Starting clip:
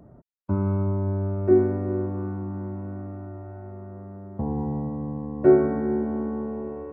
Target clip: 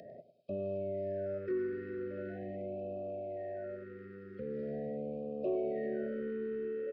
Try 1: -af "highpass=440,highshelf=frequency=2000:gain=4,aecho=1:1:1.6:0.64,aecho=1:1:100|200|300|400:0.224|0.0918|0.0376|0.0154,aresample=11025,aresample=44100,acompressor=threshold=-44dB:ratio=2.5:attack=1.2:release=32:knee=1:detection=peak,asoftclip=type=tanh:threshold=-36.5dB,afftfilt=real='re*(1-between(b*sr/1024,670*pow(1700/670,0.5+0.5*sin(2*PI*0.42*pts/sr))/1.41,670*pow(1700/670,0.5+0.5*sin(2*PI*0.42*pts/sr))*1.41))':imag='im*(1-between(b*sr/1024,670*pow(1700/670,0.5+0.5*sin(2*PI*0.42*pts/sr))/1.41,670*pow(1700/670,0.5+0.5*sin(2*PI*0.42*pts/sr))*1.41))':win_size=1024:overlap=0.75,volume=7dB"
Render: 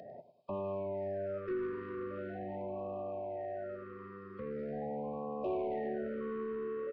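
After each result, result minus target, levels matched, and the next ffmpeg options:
1,000 Hz band +9.5 dB; soft clipping: distortion +11 dB
-af "highpass=440,highshelf=frequency=2000:gain=4,aecho=1:1:1.6:0.64,aecho=1:1:100|200|300|400:0.224|0.0918|0.0376|0.0154,aresample=11025,aresample=44100,acompressor=threshold=-44dB:ratio=2.5:attack=1.2:release=32:knee=1:detection=peak,asuperstop=centerf=980:order=8:qfactor=1.3,asoftclip=type=tanh:threshold=-36.5dB,afftfilt=real='re*(1-between(b*sr/1024,670*pow(1700/670,0.5+0.5*sin(2*PI*0.42*pts/sr))/1.41,670*pow(1700/670,0.5+0.5*sin(2*PI*0.42*pts/sr))*1.41))':imag='im*(1-between(b*sr/1024,670*pow(1700/670,0.5+0.5*sin(2*PI*0.42*pts/sr))/1.41,670*pow(1700/670,0.5+0.5*sin(2*PI*0.42*pts/sr))*1.41))':win_size=1024:overlap=0.75,volume=7dB"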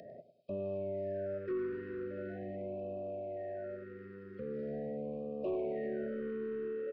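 soft clipping: distortion +10 dB
-af "highpass=440,highshelf=frequency=2000:gain=4,aecho=1:1:1.6:0.64,aecho=1:1:100|200|300|400:0.224|0.0918|0.0376|0.0154,aresample=11025,aresample=44100,acompressor=threshold=-44dB:ratio=2.5:attack=1.2:release=32:knee=1:detection=peak,asuperstop=centerf=980:order=8:qfactor=1.3,asoftclip=type=tanh:threshold=-30dB,afftfilt=real='re*(1-between(b*sr/1024,670*pow(1700/670,0.5+0.5*sin(2*PI*0.42*pts/sr))/1.41,670*pow(1700/670,0.5+0.5*sin(2*PI*0.42*pts/sr))*1.41))':imag='im*(1-between(b*sr/1024,670*pow(1700/670,0.5+0.5*sin(2*PI*0.42*pts/sr))/1.41,670*pow(1700/670,0.5+0.5*sin(2*PI*0.42*pts/sr))*1.41))':win_size=1024:overlap=0.75,volume=7dB"

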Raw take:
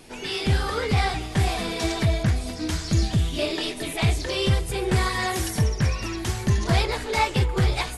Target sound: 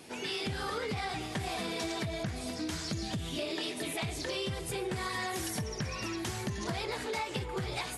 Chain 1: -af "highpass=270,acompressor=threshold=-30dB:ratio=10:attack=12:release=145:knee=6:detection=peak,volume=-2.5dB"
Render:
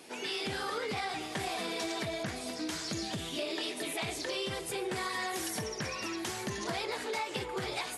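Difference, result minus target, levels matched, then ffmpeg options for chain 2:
125 Hz band −6.5 dB
-af "highpass=120,acompressor=threshold=-30dB:ratio=10:attack=12:release=145:knee=6:detection=peak,volume=-2.5dB"

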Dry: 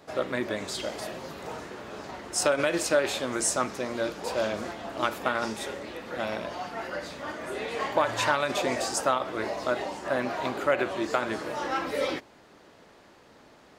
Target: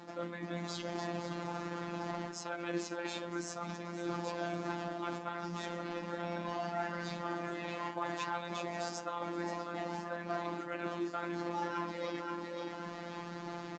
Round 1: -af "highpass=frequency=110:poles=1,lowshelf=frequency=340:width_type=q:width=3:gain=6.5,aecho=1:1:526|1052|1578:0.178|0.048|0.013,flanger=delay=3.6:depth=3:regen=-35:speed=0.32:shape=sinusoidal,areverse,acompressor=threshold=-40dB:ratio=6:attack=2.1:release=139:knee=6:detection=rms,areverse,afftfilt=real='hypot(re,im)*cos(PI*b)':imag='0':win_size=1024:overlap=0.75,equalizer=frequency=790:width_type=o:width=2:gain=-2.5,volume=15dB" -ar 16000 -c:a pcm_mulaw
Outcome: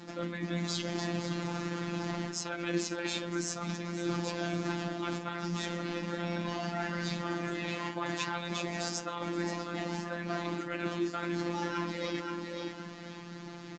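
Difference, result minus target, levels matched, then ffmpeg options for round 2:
downward compressor: peak gain reduction −8.5 dB; 1,000 Hz band −4.0 dB
-af "highpass=frequency=110:poles=1,lowshelf=frequency=340:width_type=q:width=3:gain=6.5,aecho=1:1:526|1052|1578:0.178|0.048|0.013,flanger=delay=3.6:depth=3:regen=-35:speed=0.32:shape=sinusoidal,areverse,acompressor=threshold=-50.5dB:ratio=6:attack=2.1:release=139:knee=6:detection=rms,areverse,afftfilt=real='hypot(re,im)*cos(PI*b)':imag='0':win_size=1024:overlap=0.75,equalizer=frequency=790:width_type=o:width=2:gain=7.5,volume=15dB" -ar 16000 -c:a pcm_mulaw

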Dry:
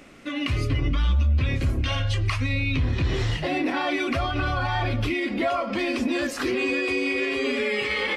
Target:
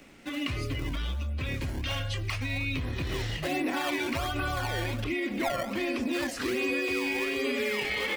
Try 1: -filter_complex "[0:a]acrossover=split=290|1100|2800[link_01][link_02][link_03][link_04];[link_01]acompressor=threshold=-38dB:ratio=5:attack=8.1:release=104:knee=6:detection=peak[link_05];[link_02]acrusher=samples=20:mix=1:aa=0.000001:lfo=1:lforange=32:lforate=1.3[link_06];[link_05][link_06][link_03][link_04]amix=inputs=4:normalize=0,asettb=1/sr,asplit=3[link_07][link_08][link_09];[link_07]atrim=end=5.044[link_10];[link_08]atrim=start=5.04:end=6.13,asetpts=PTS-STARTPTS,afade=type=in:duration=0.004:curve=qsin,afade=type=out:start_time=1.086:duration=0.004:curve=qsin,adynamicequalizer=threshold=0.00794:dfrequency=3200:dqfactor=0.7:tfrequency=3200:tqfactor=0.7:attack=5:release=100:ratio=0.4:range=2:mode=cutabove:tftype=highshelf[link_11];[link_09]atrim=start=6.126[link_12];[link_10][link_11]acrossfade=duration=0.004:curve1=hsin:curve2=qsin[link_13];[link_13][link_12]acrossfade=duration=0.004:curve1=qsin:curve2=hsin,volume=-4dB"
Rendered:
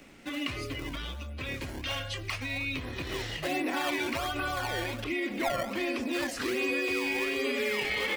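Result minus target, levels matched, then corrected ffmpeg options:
downward compressor: peak gain reduction +8.5 dB
-filter_complex "[0:a]acrossover=split=290|1100|2800[link_01][link_02][link_03][link_04];[link_01]acompressor=threshold=-27.5dB:ratio=5:attack=8.1:release=104:knee=6:detection=peak[link_05];[link_02]acrusher=samples=20:mix=1:aa=0.000001:lfo=1:lforange=32:lforate=1.3[link_06];[link_05][link_06][link_03][link_04]amix=inputs=4:normalize=0,asettb=1/sr,asplit=3[link_07][link_08][link_09];[link_07]atrim=end=5.044[link_10];[link_08]atrim=start=5.04:end=6.13,asetpts=PTS-STARTPTS,afade=type=in:duration=0.004:curve=qsin,afade=type=out:start_time=1.086:duration=0.004:curve=qsin,adynamicequalizer=threshold=0.00794:dfrequency=3200:dqfactor=0.7:tfrequency=3200:tqfactor=0.7:attack=5:release=100:ratio=0.4:range=2:mode=cutabove:tftype=highshelf[link_11];[link_09]atrim=start=6.126[link_12];[link_10][link_11]acrossfade=duration=0.004:curve1=hsin:curve2=qsin[link_13];[link_13][link_12]acrossfade=duration=0.004:curve1=qsin:curve2=hsin,volume=-4dB"

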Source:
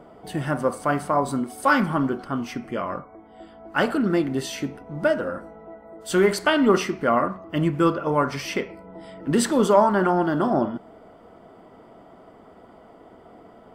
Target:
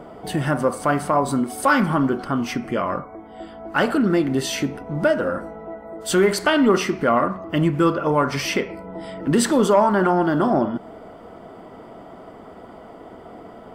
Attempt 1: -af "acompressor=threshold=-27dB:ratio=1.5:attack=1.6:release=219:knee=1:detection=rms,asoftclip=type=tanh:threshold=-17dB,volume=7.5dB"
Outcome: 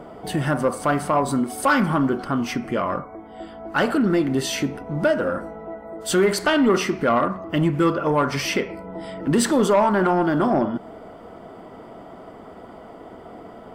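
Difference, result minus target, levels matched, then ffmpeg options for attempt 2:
soft clipping: distortion +12 dB
-af "acompressor=threshold=-27dB:ratio=1.5:attack=1.6:release=219:knee=1:detection=rms,asoftclip=type=tanh:threshold=-10dB,volume=7.5dB"

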